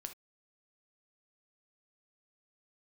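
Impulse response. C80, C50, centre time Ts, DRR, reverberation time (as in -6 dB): 31.0 dB, 11.0 dB, 8 ms, 6.5 dB, not exponential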